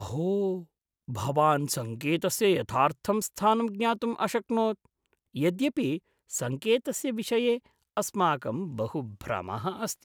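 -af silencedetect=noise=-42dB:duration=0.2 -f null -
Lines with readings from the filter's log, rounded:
silence_start: 0.63
silence_end: 1.08 | silence_duration: 0.46
silence_start: 4.74
silence_end: 5.35 | silence_duration: 0.61
silence_start: 5.98
silence_end: 6.31 | silence_duration: 0.33
silence_start: 7.58
silence_end: 7.97 | silence_duration: 0.39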